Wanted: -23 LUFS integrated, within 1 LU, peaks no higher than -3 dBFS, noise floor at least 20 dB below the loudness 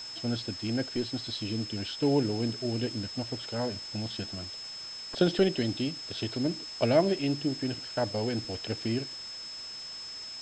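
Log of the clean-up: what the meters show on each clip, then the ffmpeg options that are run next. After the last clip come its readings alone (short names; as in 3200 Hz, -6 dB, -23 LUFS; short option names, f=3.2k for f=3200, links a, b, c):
steady tone 5200 Hz; tone level -39 dBFS; noise floor -42 dBFS; noise floor target -52 dBFS; loudness -31.5 LUFS; peak -10.0 dBFS; loudness target -23.0 LUFS
-> -af "bandreject=f=5.2k:w=30"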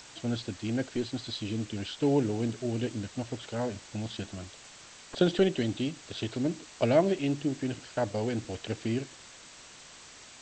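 steady tone none; noise floor -51 dBFS; noise floor target -52 dBFS
-> -af "afftdn=nr=6:nf=-51"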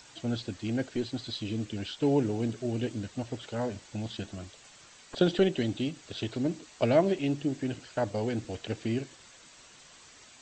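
noise floor -55 dBFS; loudness -31.5 LUFS; peak -10.5 dBFS; loudness target -23.0 LUFS
-> -af "volume=8.5dB,alimiter=limit=-3dB:level=0:latency=1"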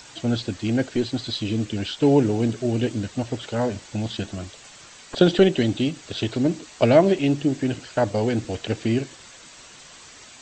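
loudness -23.0 LUFS; peak -3.0 dBFS; noise floor -46 dBFS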